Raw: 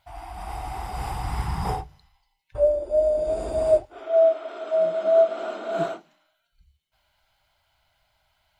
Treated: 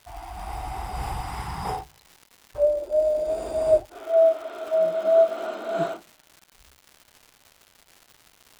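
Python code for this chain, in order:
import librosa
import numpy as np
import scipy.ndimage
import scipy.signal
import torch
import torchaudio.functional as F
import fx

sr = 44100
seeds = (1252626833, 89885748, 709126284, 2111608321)

y = fx.low_shelf(x, sr, hz=210.0, db=-9.0, at=(1.21, 3.67))
y = fx.dmg_crackle(y, sr, seeds[0], per_s=300.0, level_db=-38.0)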